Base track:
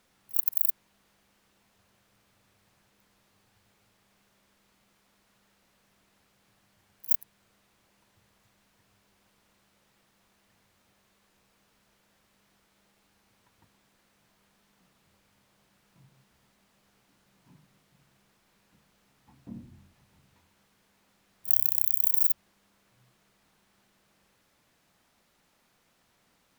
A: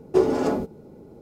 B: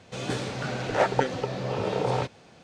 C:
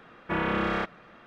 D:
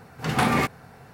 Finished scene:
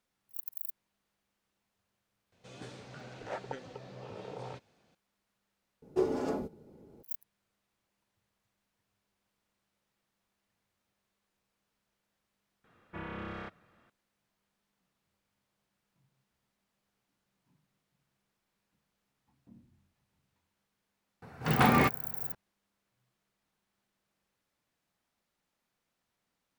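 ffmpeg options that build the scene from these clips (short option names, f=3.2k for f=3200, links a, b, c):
-filter_complex "[0:a]volume=-14.5dB[a];[3:a]equalizer=f=91:t=o:w=0.97:g=11[b];[4:a]aemphasis=mode=reproduction:type=cd[c];[2:a]atrim=end=2.63,asetpts=PTS-STARTPTS,volume=-17dB,afade=t=in:d=0.004:c=hsin,afade=t=out:st=2.626:d=0.004:c=hsin,adelay=2320[d];[1:a]atrim=end=1.21,asetpts=PTS-STARTPTS,volume=-10.5dB,afade=t=in:d=0.004:c=hsin,afade=t=out:st=1.206:d=0.004:c=hsin,adelay=5820[e];[b]atrim=end=1.26,asetpts=PTS-STARTPTS,volume=-15dB,afade=t=in:d=0.004:c=hsin,afade=t=out:st=1.256:d=0.004:c=hsin,adelay=12640[f];[c]atrim=end=1.13,asetpts=PTS-STARTPTS,volume=-2.5dB,afade=t=in:d=0.004:c=hsin,afade=t=out:st=1.126:d=0.004:c=hsin,adelay=21220[g];[a][d][e][f][g]amix=inputs=5:normalize=0"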